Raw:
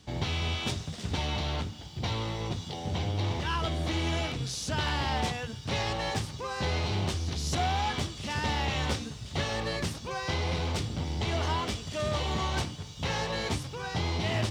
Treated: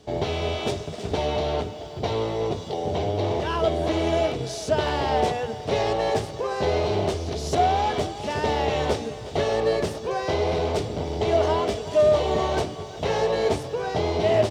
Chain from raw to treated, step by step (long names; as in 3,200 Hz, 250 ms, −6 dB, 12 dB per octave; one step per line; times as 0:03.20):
hollow resonant body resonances 440/620 Hz, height 17 dB, ringing for 30 ms
far-end echo of a speakerphone 370 ms, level −14 dB